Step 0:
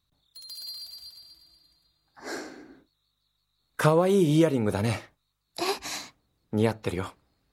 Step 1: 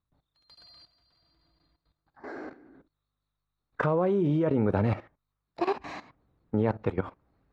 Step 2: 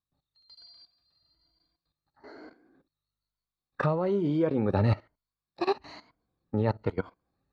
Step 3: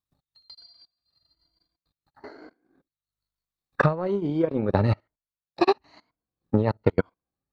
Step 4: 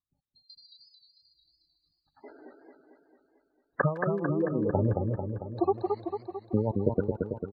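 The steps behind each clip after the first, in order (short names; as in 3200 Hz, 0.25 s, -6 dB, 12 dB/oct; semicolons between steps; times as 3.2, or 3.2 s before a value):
LPF 1600 Hz 12 dB/oct; level quantiser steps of 15 dB; gain +5.5 dB
moving spectral ripple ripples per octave 1.8, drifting +1.1 Hz, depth 9 dB; bell 4400 Hz +13 dB 0.29 oct; upward expander 1.5:1, over -39 dBFS
transient shaper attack +10 dB, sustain -11 dB
spectral gate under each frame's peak -15 dB strong; speakerphone echo 0.16 s, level -20 dB; warbling echo 0.223 s, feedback 60%, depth 112 cents, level -4 dB; gain -5 dB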